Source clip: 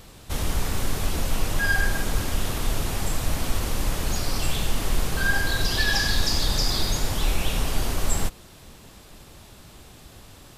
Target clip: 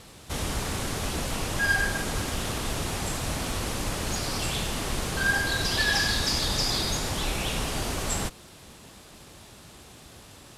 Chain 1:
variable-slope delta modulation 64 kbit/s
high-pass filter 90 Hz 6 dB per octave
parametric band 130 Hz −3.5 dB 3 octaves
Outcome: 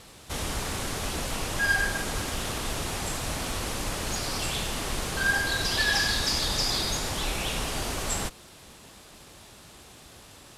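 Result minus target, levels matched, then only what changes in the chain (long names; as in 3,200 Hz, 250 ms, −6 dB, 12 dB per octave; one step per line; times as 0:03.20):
125 Hz band −2.5 dB
remove: parametric band 130 Hz −3.5 dB 3 octaves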